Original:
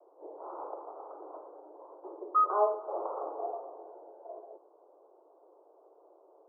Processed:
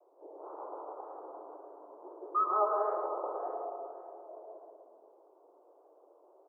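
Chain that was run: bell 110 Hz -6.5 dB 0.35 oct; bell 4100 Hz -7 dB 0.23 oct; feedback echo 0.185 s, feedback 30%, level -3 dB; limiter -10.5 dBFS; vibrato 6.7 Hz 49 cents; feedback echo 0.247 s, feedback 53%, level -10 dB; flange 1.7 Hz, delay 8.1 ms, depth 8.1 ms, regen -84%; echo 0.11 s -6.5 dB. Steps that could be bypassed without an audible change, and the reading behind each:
bell 110 Hz: input band starts at 290 Hz; bell 4100 Hz: input band ends at 1400 Hz; limiter -10.5 dBFS: input peak -13.0 dBFS

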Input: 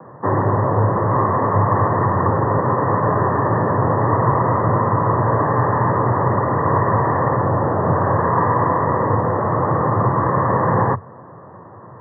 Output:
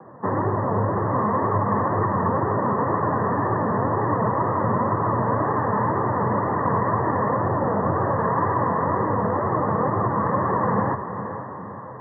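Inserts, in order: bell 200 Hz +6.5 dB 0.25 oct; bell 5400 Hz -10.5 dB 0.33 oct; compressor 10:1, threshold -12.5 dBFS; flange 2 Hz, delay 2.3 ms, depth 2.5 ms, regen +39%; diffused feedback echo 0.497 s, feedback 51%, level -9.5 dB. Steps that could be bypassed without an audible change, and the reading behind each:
bell 5400 Hz: input band ends at 1900 Hz

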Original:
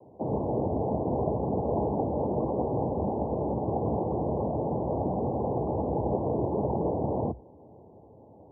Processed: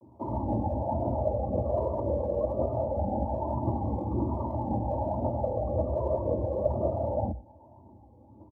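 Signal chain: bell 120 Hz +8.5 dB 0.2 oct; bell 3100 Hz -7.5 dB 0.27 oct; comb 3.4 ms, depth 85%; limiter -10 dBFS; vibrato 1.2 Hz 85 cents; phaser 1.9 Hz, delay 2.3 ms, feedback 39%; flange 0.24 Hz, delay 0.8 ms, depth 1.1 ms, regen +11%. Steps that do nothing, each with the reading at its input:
bell 3100 Hz: input band ends at 1100 Hz; limiter -10 dBFS: input peak -13.0 dBFS

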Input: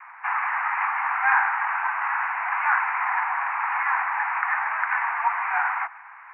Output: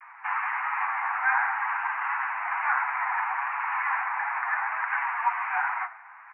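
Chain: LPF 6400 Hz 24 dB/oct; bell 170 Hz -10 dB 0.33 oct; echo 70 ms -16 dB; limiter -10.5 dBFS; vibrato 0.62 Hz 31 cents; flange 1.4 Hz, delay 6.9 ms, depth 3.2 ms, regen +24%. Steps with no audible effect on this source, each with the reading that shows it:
LPF 6400 Hz: input band ends at 2900 Hz; bell 170 Hz: input band starts at 640 Hz

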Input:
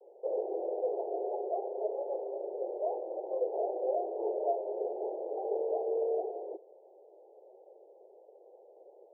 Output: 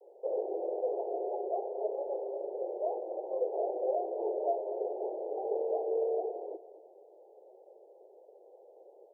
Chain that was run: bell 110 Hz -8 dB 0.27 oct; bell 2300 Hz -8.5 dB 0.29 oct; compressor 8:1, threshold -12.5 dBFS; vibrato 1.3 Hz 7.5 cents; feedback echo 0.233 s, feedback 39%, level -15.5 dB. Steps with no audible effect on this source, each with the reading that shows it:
bell 110 Hz: input band starts at 300 Hz; bell 2300 Hz: input band ends at 960 Hz; compressor, threshold -12.5 dBFS: input peak -20.5 dBFS

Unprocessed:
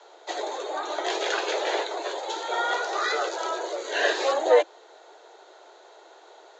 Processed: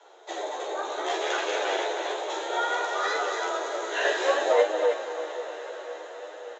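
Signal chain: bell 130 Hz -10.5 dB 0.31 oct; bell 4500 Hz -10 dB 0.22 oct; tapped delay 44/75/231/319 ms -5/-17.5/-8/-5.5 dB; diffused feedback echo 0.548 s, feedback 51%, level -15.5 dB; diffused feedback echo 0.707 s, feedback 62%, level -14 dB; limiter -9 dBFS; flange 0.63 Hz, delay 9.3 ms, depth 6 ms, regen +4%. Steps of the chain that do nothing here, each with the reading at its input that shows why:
bell 130 Hz: input band starts at 290 Hz

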